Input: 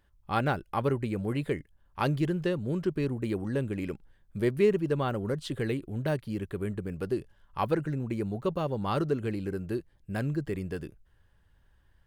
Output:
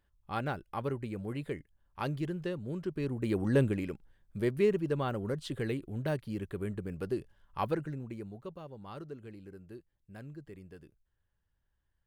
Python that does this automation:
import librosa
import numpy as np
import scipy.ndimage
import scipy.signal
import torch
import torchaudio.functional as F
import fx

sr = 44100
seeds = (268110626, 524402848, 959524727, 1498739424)

y = fx.gain(x, sr, db=fx.line((2.89, -7.0), (3.62, 5.0), (3.87, -3.5), (7.64, -3.5), (8.61, -16.0)))